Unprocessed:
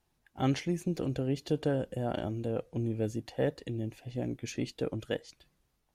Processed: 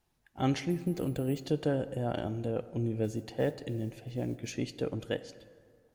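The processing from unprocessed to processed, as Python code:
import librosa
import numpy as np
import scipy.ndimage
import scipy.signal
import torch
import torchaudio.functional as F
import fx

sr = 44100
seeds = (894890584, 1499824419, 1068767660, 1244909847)

y = fx.resample_bad(x, sr, factor=4, down='filtered', up='hold', at=(0.7, 1.43))
y = fx.mod_noise(y, sr, seeds[0], snr_db=32, at=(3.03, 4.52), fade=0.02)
y = fx.rev_plate(y, sr, seeds[1], rt60_s=2.1, hf_ratio=0.5, predelay_ms=0, drr_db=14.0)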